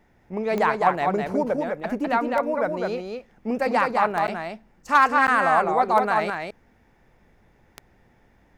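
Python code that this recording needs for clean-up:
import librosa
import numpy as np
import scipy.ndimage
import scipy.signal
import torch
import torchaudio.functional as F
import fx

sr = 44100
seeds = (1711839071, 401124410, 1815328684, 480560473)

y = fx.fix_declip(x, sr, threshold_db=-7.0)
y = fx.fix_declick_ar(y, sr, threshold=10.0)
y = fx.fix_interpolate(y, sr, at_s=(4.27, 5.27), length_ms=9.4)
y = fx.fix_echo_inverse(y, sr, delay_ms=206, level_db=-4.0)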